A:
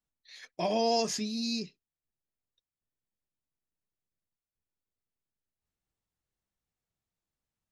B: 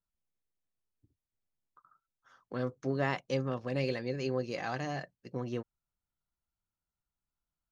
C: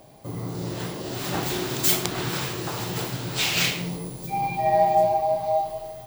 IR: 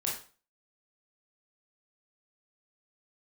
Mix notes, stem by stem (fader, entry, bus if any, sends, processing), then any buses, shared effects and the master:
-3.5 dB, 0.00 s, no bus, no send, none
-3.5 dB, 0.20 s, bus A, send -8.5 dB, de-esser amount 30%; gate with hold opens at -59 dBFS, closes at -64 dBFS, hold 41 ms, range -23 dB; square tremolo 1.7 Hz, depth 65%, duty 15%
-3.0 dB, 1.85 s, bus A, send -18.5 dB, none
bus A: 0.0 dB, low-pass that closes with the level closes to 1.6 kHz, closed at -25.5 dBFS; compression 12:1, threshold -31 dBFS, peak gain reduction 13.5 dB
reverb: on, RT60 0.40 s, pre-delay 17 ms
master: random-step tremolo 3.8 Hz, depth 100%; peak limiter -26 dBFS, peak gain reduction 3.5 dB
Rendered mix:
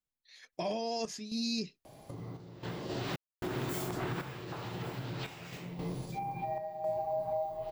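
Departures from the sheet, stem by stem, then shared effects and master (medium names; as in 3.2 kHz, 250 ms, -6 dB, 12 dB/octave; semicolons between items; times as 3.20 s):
stem A -3.5 dB -> +7.5 dB; stem B: muted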